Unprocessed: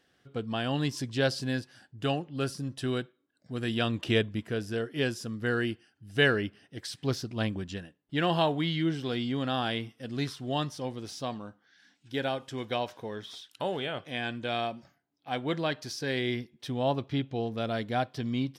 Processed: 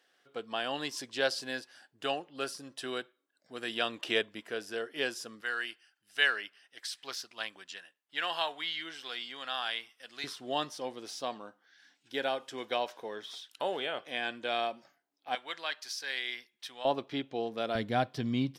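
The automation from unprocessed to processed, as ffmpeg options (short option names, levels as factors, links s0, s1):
-af "asetnsamples=n=441:p=0,asendcmd='5.41 highpass f 1100;10.24 highpass f 390;15.35 highpass f 1200;16.85 highpass f 330;17.75 highpass f 100',highpass=500"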